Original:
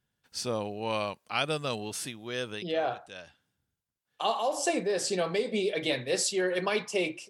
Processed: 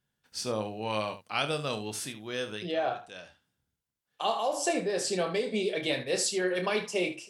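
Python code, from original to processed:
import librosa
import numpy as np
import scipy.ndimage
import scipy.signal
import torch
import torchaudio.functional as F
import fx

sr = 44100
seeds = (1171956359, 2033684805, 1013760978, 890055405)

y = fx.hum_notches(x, sr, base_hz=50, count=2)
y = fx.room_early_taps(y, sr, ms=(28, 74), db=(-9.0, -13.0))
y = F.gain(torch.from_numpy(y), -1.0).numpy()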